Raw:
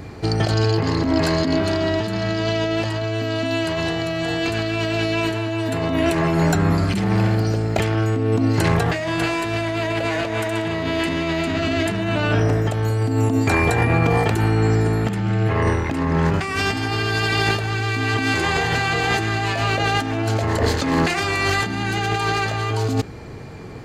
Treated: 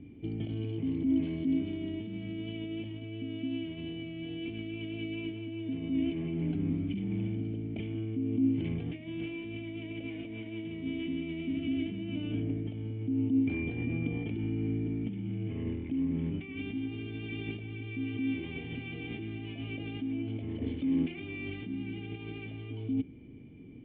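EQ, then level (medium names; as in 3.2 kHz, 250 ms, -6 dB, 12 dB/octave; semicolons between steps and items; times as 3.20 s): cascade formant filter i; -5.0 dB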